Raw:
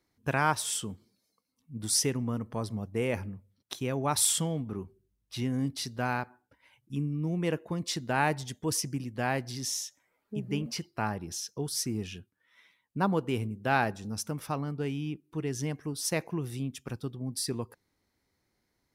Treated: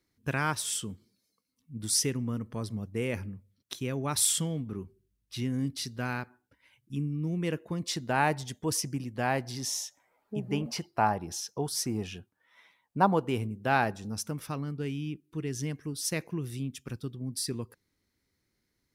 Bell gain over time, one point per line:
bell 780 Hz 1.1 oct
7.52 s -7.5 dB
8.04 s +1.5 dB
9.24 s +1.5 dB
9.76 s +9.5 dB
12.98 s +9.5 dB
13.42 s +1 dB
14.11 s +1 dB
14.61 s -9 dB

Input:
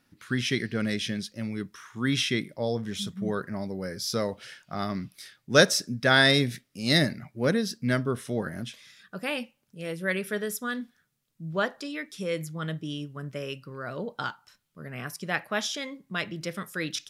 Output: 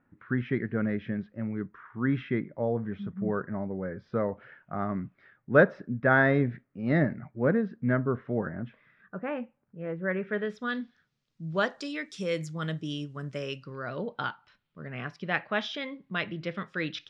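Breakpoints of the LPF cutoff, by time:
LPF 24 dB/oct
10.14 s 1700 Hz
10.68 s 4300 Hz
11.86 s 7800 Hz
13.36 s 7800 Hz
14.15 s 3600 Hz

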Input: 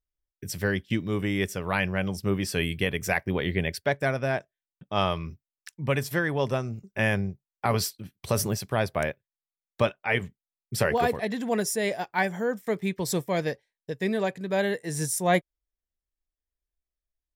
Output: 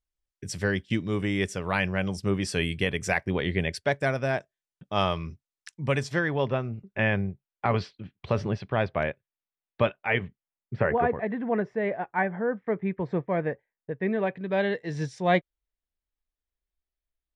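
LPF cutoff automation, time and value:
LPF 24 dB/oct
5.93 s 9200 Hz
6.51 s 3400 Hz
10.17 s 3400 Hz
10.87 s 2000 Hz
13.91 s 2000 Hz
14.8 s 4200 Hz

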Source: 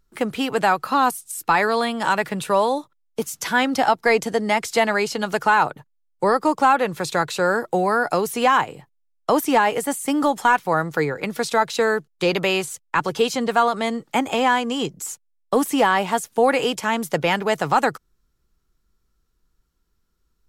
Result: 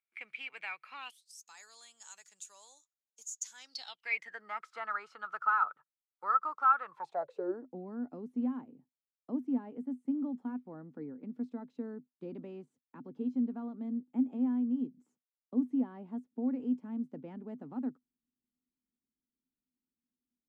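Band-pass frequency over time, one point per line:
band-pass, Q 15
0.99 s 2300 Hz
1.44 s 6800 Hz
3.54 s 6800 Hz
4.46 s 1300 Hz
6.83 s 1300 Hz
7.68 s 250 Hz

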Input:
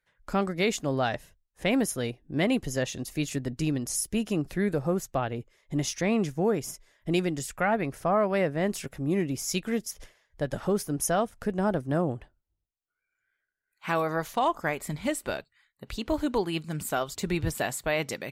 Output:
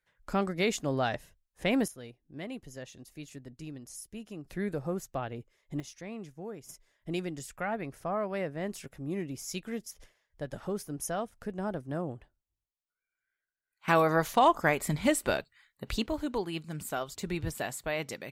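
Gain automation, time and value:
-2.5 dB
from 1.88 s -15 dB
from 4.5 s -6.5 dB
from 5.8 s -16 dB
from 6.69 s -8 dB
from 13.88 s +3 dB
from 16.06 s -5.5 dB

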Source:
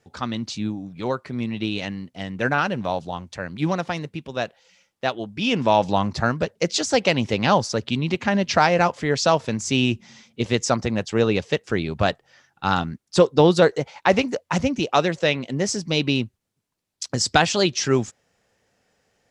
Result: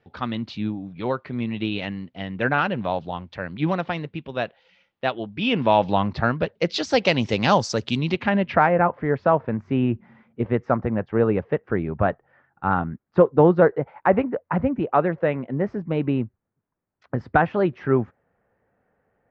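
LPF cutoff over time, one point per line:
LPF 24 dB/oct
6.5 s 3600 Hz
7.43 s 7200 Hz
7.97 s 7200 Hz
8.27 s 3400 Hz
8.77 s 1700 Hz

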